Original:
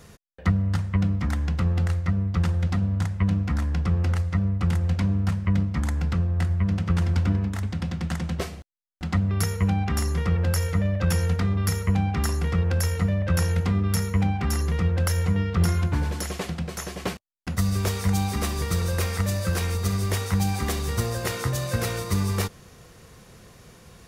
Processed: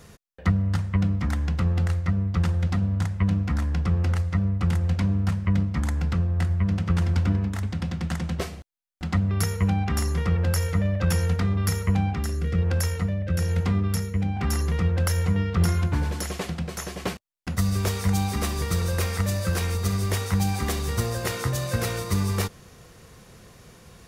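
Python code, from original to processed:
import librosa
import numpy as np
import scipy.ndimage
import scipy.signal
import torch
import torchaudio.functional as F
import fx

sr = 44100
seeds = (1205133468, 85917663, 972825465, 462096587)

y = fx.rotary(x, sr, hz=1.1, at=(12.13, 14.37))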